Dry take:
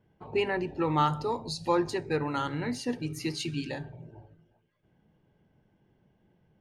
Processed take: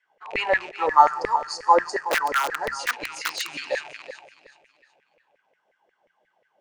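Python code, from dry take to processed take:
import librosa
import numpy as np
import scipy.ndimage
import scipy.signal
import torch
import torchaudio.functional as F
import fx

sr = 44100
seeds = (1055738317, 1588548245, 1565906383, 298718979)

p1 = fx.rattle_buzz(x, sr, strikes_db=-44.0, level_db=-34.0)
p2 = p1 + fx.echo_feedback(p1, sr, ms=374, feedback_pct=39, wet_db=-13.5, dry=0)
p3 = fx.spec_box(p2, sr, start_s=0.86, length_s=1.93, low_hz=2000.0, high_hz=4300.0, gain_db=-19)
p4 = np.sign(p3) * np.maximum(np.abs(p3) - 10.0 ** (-46.5 / 20.0), 0.0)
p5 = p3 + (p4 * librosa.db_to_amplitude(-9.5))
p6 = scipy.signal.sosfilt(scipy.signal.butter(6, 8400.0, 'lowpass', fs=sr, output='sos'), p5)
p7 = fx.high_shelf(p6, sr, hz=5400.0, db=7.0)
p8 = fx.overflow_wrap(p7, sr, gain_db=20.0, at=(2.05, 3.49))
p9 = fx.filter_lfo_highpass(p8, sr, shape='saw_down', hz=5.6, low_hz=490.0, high_hz=2100.0, q=6.2)
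p10 = fx.low_shelf(p9, sr, hz=67.0, db=10.5)
y = fx.hum_notches(p10, sr, base_hz=60, count=3)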